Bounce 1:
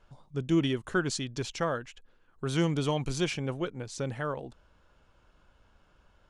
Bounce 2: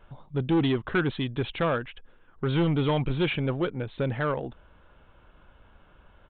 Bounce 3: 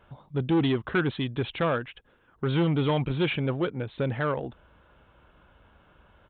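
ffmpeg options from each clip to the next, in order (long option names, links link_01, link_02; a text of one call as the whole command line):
ffmpeg -i in.wav -af "equalizer=frequency=3100:width_type=o:width=0.77:gain=-2,aresample=8000,asoftclip=type=tanh:threshold=-26dB,aresample=44100,volume=7.5dB" out.wav
ffmpeg -i in.wav -af "highpass=48" out.wav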